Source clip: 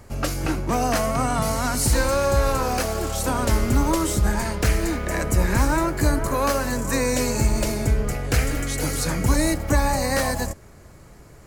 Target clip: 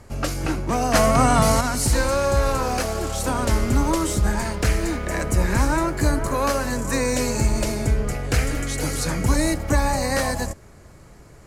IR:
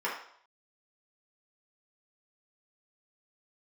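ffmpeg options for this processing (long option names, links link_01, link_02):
-filter_complex "[0:a]asettb=1/sr,asplit=3[link_01][link_02][link_03];[link_01]atrim=end=0.944[link_04];[link_02]atrim=start=0.94:end=1.61,asetpts=PTS-STARTPTS,afade=type=in:duration=0.004:curve=qsin,afade=type=out:start_time=0.666:duration=0.004:curve=qsin,acontrast=61[link_05];[link_03]atrim=start=1.606[link_06];[link_04][link_05]acrossfade=duration=0.004:curve1=hsin:curve2=qsin[link_07];[link_07][link_06]acrossfade=duration=0.004:curve1=qsin:curve2=hsin,lowpass=12000,asettb=1/sr,asplit=3[link_08][link_09][link_10];[link_08]atrim=end=4.504[link_11];[link_09]atrim=start=4.5:end=5.47,asetpts=PTS-STARTPTS,afade=type=in:duration=0.004:curve=qsin,afade=type=out:start_time=0.966:duration=0.004:curve=qsin,aeval=exprs='sgn(val(0))*max(abs(val(0))-0.00224,0)':channel_layout=same[link_12];[link_10]atrim=start=5.466[link_13];[link_11][link_12]acrossfade=duration=0.004:curve1=hsin:curve2=qsin[link_14];[link_14][link_13]acrossfade=duration=0.004:curve1=qsin:curve2=hsin"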